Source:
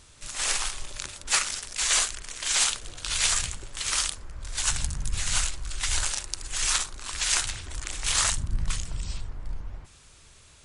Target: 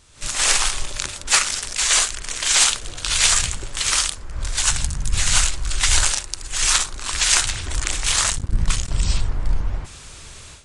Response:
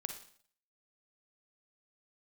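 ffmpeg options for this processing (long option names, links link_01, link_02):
-filter_complex "[0:a]dynaudnorm=framelen=130:gausssize=3:maxgain=15dB,asettb=1/sr,asplit=3[link_01][link_02][link_03];[link_01]atrim=end=8.154[link_04];[link_02]atrim=start=8.15:end=8.99,asetpts=PTS-STARTPTS,afade=type=in:duration=0.004:curve=qsin,afade=type=out:start_time=0.836:duration=0.004:curve=qsin,aeval=exprs='sgn(val(0))*max(abs(val(0))-0.0447,0)':channel_layout=same[link_05];[link_03]atrim=start=8.986[link_06];[link_04][link_05]acrossfade=duration=0.004:curve1=hsin:curve2=qsin[link_07];[link_07][link_06]acrossfade=duration=0.004:curve1=qsin:curve2=hsin,aresample=22050,aresample=44100,volume=-1dB"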